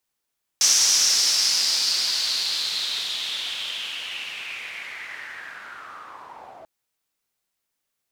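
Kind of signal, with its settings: swept filtered noise pink, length 6.04 s bandpass, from 5.9 kHz, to 650 Hz, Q 5, linear, gain ramp -27 dB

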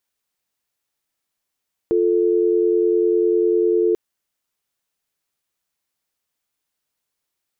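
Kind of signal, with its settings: call progress tone dial tone, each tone -17 dBFS 2.04 s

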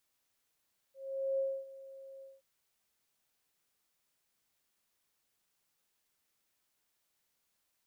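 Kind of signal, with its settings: ADSR sine 540 Hz, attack 446 ms, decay 262 ms, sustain -18.5 dB, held 1.28 s, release 196 ms -29 dBFS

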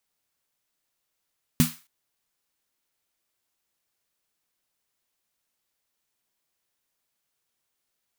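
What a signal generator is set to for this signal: snare drum length 0.27 s, tones 160 Hz, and 240 Hz, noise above 990 Hz, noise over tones -8 dB, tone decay 0.19 s, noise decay 0.35 s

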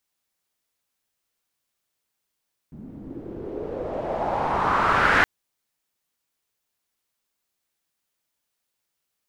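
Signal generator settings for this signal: swept filtered noise white, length 2.52 s lowpass, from 210 Hz, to 1.7 kHz, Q 3.2, exponential, gain ramp +15.5 dB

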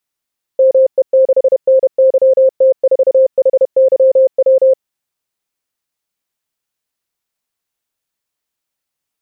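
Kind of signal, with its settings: Morse "ME6NYT4HYW" 31 wpm 527 Hz -5 dBFS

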